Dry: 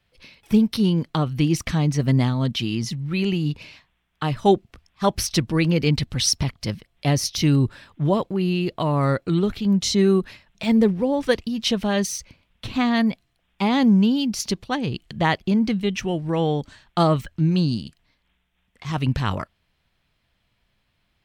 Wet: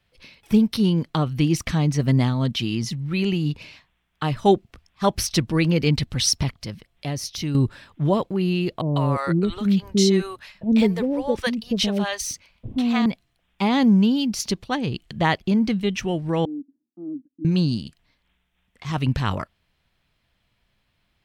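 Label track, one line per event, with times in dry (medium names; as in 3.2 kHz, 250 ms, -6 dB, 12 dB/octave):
6.620000	7.550000	compression 1.5:1, threshold -37 dBFS
8.810000	13.060000	bands offset in time lows, highs 150 ms, split 580 Hz
16.450000	17.450000	Butterworth band-pass 280 Hz, Q 4.8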